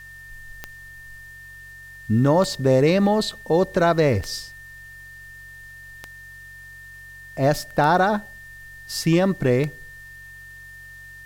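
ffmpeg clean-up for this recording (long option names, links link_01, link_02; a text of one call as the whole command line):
ffmpeg -i in.wav -af "adeclick=threshold=4,bandreject=frequency=46.2:width_type=h:width=4,bandreject=frequency=92.4:width_type=h:width=4,bandreject=frequency=138.6:width_type=h:width=4,bandreject=frequency=1800:width=30,agate=range=-21dB:threshold=-34dB" out.wav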